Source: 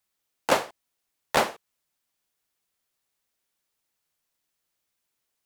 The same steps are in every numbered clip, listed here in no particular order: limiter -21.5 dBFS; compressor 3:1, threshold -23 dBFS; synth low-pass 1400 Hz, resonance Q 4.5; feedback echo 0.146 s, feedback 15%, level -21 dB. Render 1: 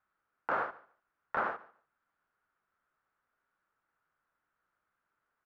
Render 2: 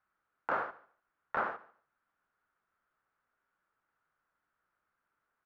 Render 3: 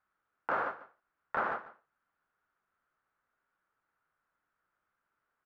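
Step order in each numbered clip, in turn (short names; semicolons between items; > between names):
compressor > synth low-pass > limiter > feedback echo; synth low-pass > compressor > limiter > feedback echo; feedback echo > compressor > synth low-pass > limiter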